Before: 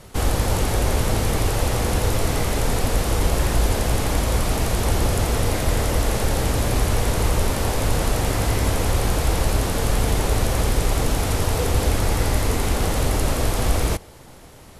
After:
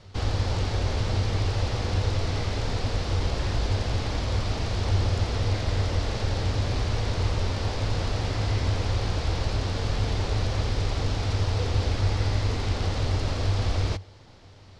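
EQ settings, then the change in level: four-pole ladder low-pass 5.7 kHz, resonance 40%; peaking EQ 96 Hz +14.5 dB 0.25 oct; 0.0 dB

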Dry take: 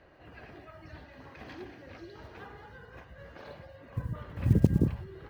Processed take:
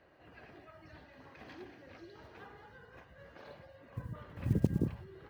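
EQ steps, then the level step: bass shelf 66 Hz -10.5 dB; -5.0 dB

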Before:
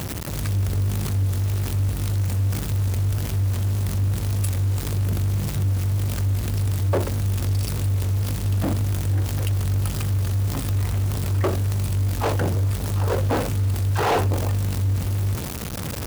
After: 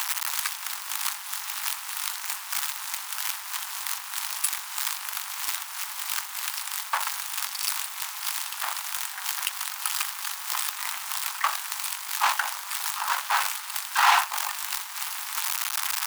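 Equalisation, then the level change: steep high-pass 880 Hz 48 dB/octave; +7.0 dB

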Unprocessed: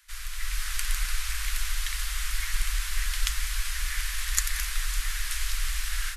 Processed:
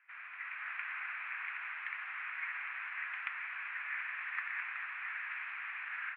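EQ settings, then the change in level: Chebyshev band-pass 260–2500 Hz, order 5; bass shelf 410 Hz -6 dB; peaking EQ 520 Hz -5.5 dB 0.31 oct; -1.0 dB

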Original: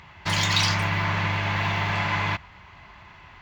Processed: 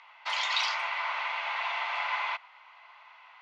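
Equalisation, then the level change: inverse Chebyshev high-pass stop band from 160 Hz, stop band 70 dB; low-pass 3.9 kHz 12 dB/octave; band-stop 1.7 kHz, Q 6.8; -3.5 dB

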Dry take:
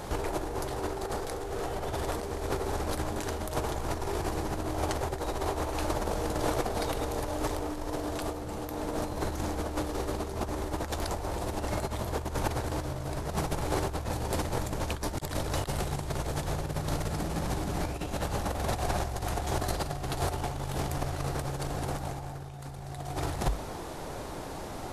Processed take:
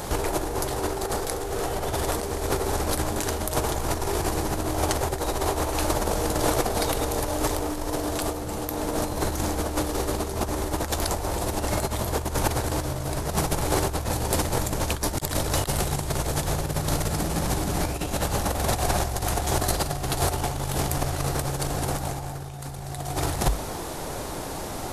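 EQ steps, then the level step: treble shelf 5.9 kHz +9 dB; +5.5 dB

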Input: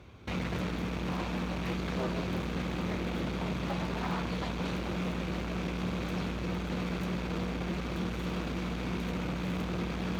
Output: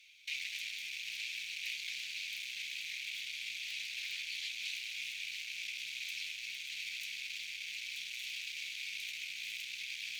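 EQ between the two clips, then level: elliptic high-pass 2.3 kHz, stop band 50 dB; +5.5 dB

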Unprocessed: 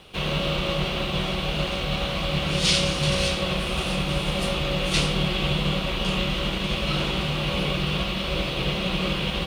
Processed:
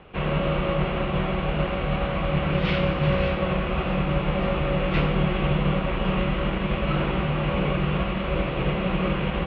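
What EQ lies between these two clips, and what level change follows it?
low-pass 2.2 kHz 24 dB/octave; +2.5 dB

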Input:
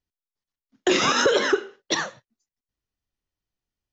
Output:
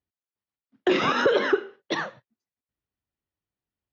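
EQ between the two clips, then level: high-pass 71 Hz; distance through air 270 m; 0.0 dB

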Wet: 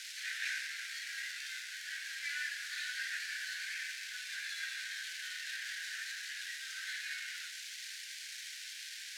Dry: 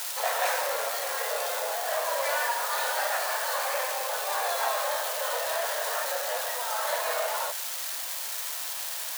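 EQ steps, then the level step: rippled Chebyshev high-pass 1.5 kHz, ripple 3 dB; low-pass 2.4 kHz 12 dB/octave; differentiator; +9.5 dB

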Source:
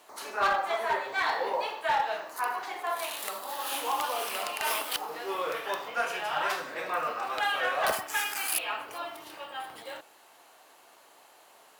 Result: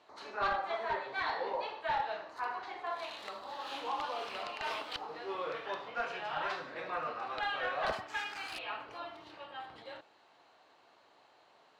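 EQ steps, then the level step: distance through air 160 m; bass shelf 140 Hz +11.5 dB; peaking EQ 4.1 kHz +6 dB 0.34 oct; -6.0 dB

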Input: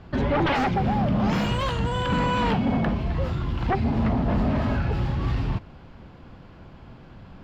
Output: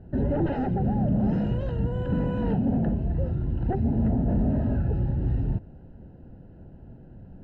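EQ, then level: boxcar filter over 39 samples; 0.0 dB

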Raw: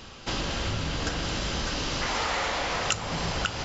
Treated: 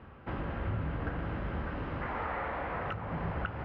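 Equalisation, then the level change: high-pass 62 Hz; low-pass 1.9 kHz 24 dB/octave; bass shelf 120 Hz +8.5 dB; -6.0 dB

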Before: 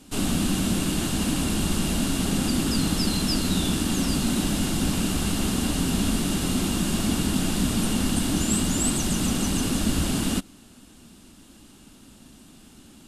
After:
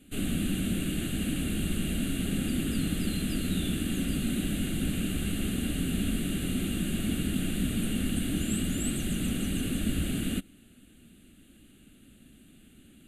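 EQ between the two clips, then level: static phaser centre 2.3 kHz, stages 4; -4.5 dB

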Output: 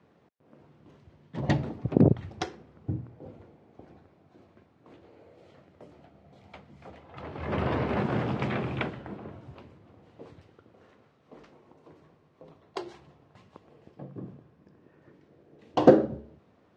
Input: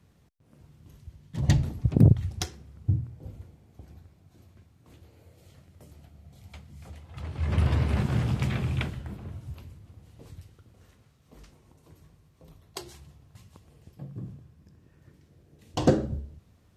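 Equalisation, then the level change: band-pass 380–5400 Hz; tilt EQ -2 dB/octave; treble shelf 3.1 kHz -10 dB; +7.0 dB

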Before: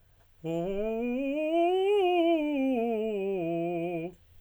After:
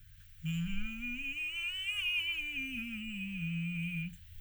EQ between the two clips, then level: inverse Chebyshev band-stop 350–750 Hz, stop band 60 dB; +6.0 dB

